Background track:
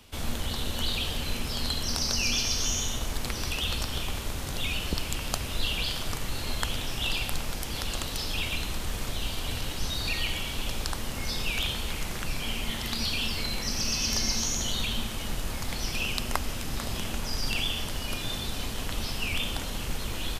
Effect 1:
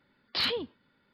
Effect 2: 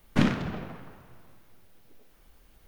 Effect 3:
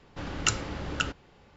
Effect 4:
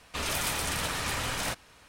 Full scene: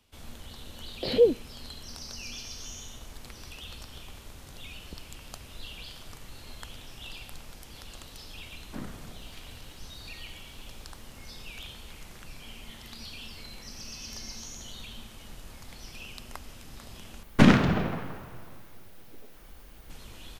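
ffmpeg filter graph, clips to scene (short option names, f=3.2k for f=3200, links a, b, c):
-filter_complex "[2:a]asplit=2[a][b];[0:a]volume=-13.5dB[c];[1:a]lowshelf=f=780:t=q:w=3:g=14[d];[a]acrossover=split=150|2100[e][f][g];[e]adelay=50[h];[g]adelay=590[i];[h][f][i]amix=inputs=3:normalize=0[j];[b]alimiter=level_in=13dB:limit=-1dB:release=50:level=0:latency=1[k];[c]asplit=2[l][m];[l]atrim=end=17.234[n];[k]atrim=end=2.67,asetpts=PTS-STARTPTS,volume=-4.5dB[o];[m]atrim=start=19.896[p];[d]atrim=end=1.13,asetpts=PTS-STARTPTS,volume=-6.5dB,afade=t=in:d=0.004:c=hsin,afade=t=out:st=1.126:d=0.004:c=hsin,adelay=680[q];[j]atrim=end=2.67,asetpts=PTS-STARTPTS,volume=-15dB,afade=t=in:d=0.004:c=hsin,afade=t=out:st=2.666:d=0.004:c=hsin,adelay=8570[r];[n][o]acrossfade=d=0.004:c1=hsin:c2=hsin[s];[s][p]acrossfade=d=0.004:c1=hsin:c2=hsin[t];[t][q][r]amix=inputs=3:normalize=0"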